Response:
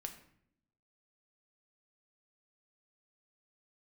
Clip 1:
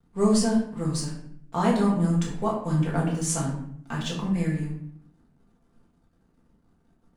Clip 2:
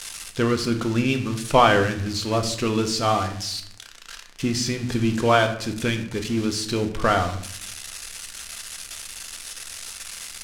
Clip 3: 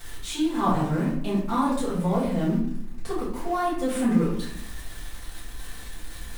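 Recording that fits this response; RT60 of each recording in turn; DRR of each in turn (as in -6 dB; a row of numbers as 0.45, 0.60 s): 2; 0.65 s, not exponential, 0.65 s; -4.5, 5.0, -10.5 dB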